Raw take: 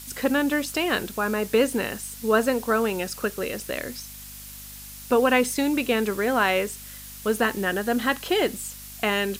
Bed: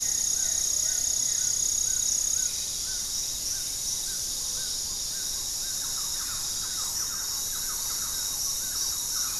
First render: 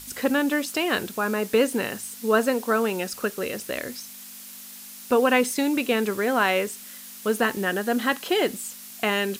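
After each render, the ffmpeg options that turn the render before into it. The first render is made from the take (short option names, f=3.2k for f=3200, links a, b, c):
-af "bandreject=f=50:t=h:w=4,bandreject=f=100:t=h:w=4,bandreject=f=150:t=h:w=4"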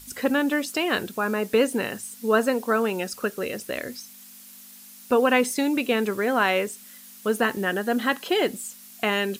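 -af "afftdn=nr=6:nf=-42"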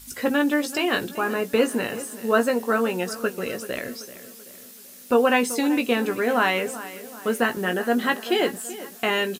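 -filter_complex "[0:a]asplit=2[a][b];[b]adelay=17,volume=-7dB[c];[a][c]amix=inputs=2:normalize=0,asplit=2[d][e];[e]adelay=384,lowpass=f=3.5k:p=1,volume=-15dB,asplit=2[f][g];[g]adelay=384,lowpass=f=3.5k:p=1,volume=0.49,asplit=2[h][i];[i]adelay=384,lowpass=f=3.5k:p=1,volume=0.49,asplit=2[j][k];[k]adelay=384,lowpass=f=3.5k:p=1,volume=0.49,asplit=2[l][m];[m]adelay=384,lowpass=f=3.5k:p=1,volume=0.49[n];[d][f][h][j][l][n]amix=inputs=6:normalize=0"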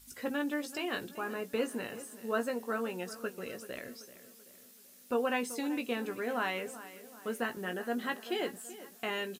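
-af "volume=-12.5dB"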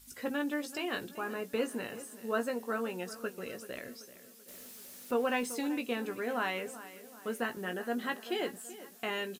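-filter_complex "[0:a]asettb=1/sr,asplit=3[a][b][c];[a]atrim=end=4.484[d];[b]atrim=start=4.48:end=5.73,asetpts=PTS-STARTPTS,afade=t=in:d=0.004:c=qsin,afade=t=out:st=1.246:d=0.004:c=qsin,aeval=exprs='val(0)+0.5*0.00398*sgn(val(0))':c=same[e];[c]atrim=start=5.726[f];[d][e]acrossfade=d=0.004:c1=hsin:c2=qsin[g];[g][f]acrossfade=d=0.004:c1=qsin:c2=hsin"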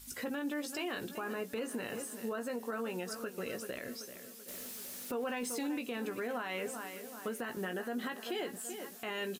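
-filter_complex "[0:a]asplit=2[a][b];[b]acompressor=threshold=-43dB:ratio=6,volume=-2.5dB[c];[a][c]amix=inputs=2:normalize=0,alimiter=level_in=5dB:limit=-24dB:level=0:latency=1:release=84,volume=-5dB"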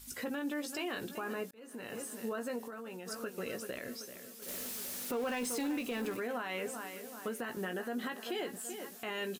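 -filter_complex "[0:a]asplit=3[a][b][c];[a]afade=t=out:st=2.65:d=0.02[d];[b]acompressor=threshold=-41dB:ratio=6:attack=3.2:release=140:knee=1:detection=peak,afade=t=in:st=2.65:d=0.02,afade=t=out:st=3.06:d=0.02[e];[c]afade=t=in:st=3.06:d=0.02[f];[d][e][f]amix=inputs=3:normalize=0,asettb=1/sr,asplit=3[g][h][i];[g]atrim=end=4.424[j];[h]atrim=start=4.42:end=6.17,asetpts=PTS-STARTPTS,afade=t=in:d=0.004:c=qsin,afade=t=out:st=1.746:d=0.004:c=qsin,aeval=exprs='val(0)+0.5*0.00631*sgn(val(0))':c=same[k];[i]atrim=start=6.166[l];[j][k]acrossfade=d=0.004:c1=hsin:c2=qsin[m];[m][l]acrossfade=d=0.004:c1=qsin:c2=hsin,asplit=2[n][o];[n]atrim=end=1.51,asetpts=PTS-STARTPTS,afade=t=out:st=1.506:d=0.004:c=hsin[p];[o]atrim=start=1.51,asetpts=PTS-STARTPTS,afade=t=in:d=0.56[q];[p][q]concat=n=2:v=0:a=1"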